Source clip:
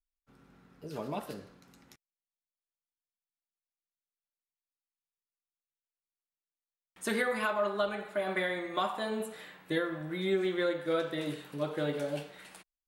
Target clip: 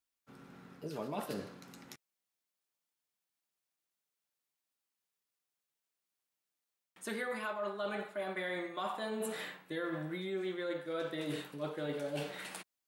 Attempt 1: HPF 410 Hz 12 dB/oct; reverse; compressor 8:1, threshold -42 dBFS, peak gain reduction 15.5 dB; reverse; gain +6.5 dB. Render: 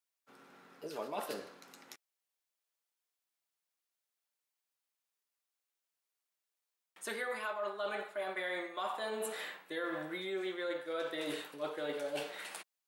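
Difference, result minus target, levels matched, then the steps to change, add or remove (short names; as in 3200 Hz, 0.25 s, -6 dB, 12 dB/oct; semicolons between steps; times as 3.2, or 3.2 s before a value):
125 Hz band -12.5 dB
change: HPF 120 Hz 12 dB/oct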